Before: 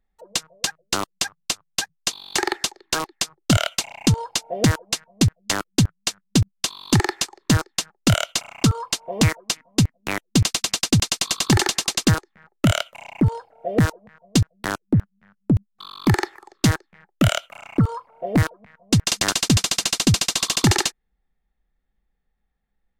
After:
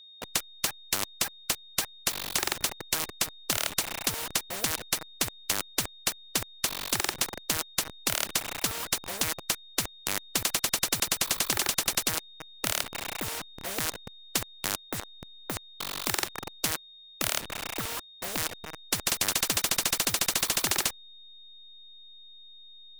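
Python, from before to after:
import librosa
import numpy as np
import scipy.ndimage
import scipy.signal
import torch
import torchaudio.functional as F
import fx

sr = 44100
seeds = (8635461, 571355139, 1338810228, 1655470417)

y = fx.delta_hold(x, sr, step_db=-36.0)
y = y + 10.0 ** (-46.0 / 20.0) * np.sin(2.0 * np.pi * 3700.0 * np.arange(len(y)) / sr)
y = fx.spectral_comp(y, sr, ratio=4.0)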